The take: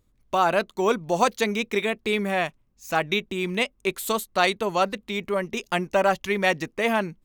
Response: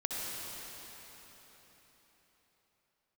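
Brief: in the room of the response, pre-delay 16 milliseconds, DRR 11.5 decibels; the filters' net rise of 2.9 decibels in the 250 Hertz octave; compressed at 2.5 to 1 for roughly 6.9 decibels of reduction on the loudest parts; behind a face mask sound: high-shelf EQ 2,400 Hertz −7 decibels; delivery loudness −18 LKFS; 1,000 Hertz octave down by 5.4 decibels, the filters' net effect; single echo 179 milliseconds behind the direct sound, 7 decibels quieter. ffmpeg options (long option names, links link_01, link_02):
-filter_complex "[0:a]equalizer=frequency=250:width_type=o:gain=4.5,equalizer=frequency=1000:width_type=o:gain=-7,acompressor=threshold=-28dB:ratio=2.5,aecho=1:1:179:0.447,asplit=2[link_01][link_02];[1:a]atrim=start_sample=2205,adelay=16[link_03];[link_02][link_03]afir=irnorm=-1:irlink=0,volume=-16.5dB[link_04];[link_01][link_04]amix=inputs=2:normalize=0,highshelf=frequency=2400:gain=-7,volume=13dB"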